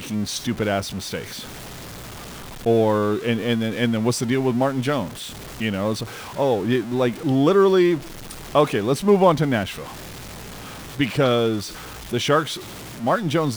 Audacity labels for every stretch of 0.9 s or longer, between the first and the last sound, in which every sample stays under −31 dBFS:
1.410000	2.660000	silence
9.840000	10.980000	silence